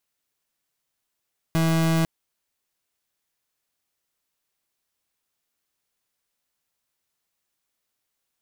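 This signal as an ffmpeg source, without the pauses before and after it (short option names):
-f lavfi -i "aevalsrc='0.0944*(2*lt(mod(163*t,1),0.36)-1)':d=0.5:s=44100"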